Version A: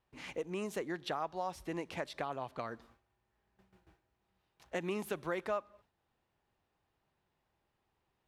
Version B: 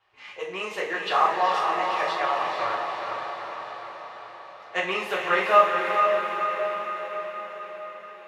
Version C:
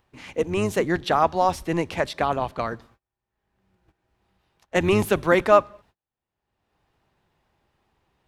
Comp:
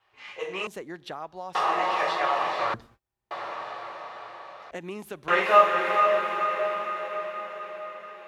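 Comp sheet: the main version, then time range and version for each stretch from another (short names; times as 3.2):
B
0.67–1.55 from A
2.74–3.31 from C
4.71–5.28 from A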